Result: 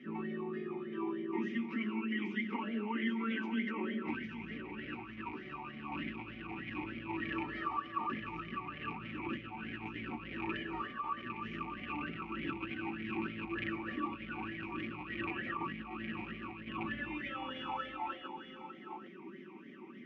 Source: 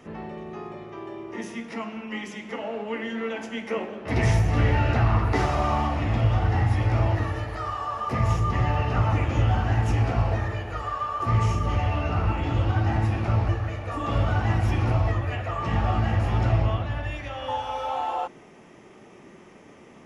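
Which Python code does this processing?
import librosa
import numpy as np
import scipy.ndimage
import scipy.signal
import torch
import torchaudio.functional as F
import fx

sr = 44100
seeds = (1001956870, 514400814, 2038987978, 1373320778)

y = fx.rattle_buzz(x, sr, strikes_db=-24.0, level_db=-21.0)
y = fx.peak_eq(y, sr, hz=1700.0, db=4.0, octaves=0.43)
y = y + 0.79 * np.pad(y, (int(5.3 * sr / 1000.0), 0))[:len(y)]
y = fx.over_compress(y, sr, threshold_db=-29.0, ratio=-1.0)
y = fx.air_absorb(y, sr, metres=150.0)
y = y + 10.0 ** (-9.0 / 20.0) * np.pad(y, (int(806 * sr / 1000.0), 0))[:len(y)]
y = fx.vowel_sweep(y, sr, vowels='i-u', hz=3.3)
y = y * librosa.db_to_amplitude(4.0)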